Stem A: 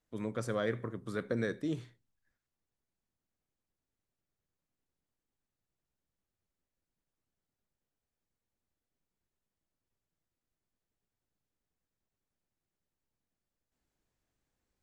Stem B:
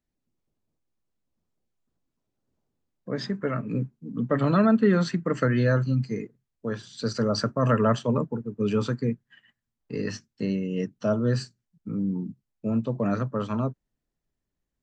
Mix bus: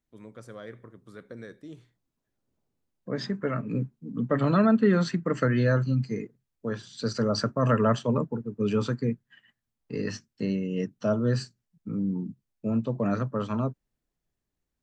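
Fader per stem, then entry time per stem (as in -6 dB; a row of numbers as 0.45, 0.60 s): -9.0, -1.0 dB; 0.00, 0.00 s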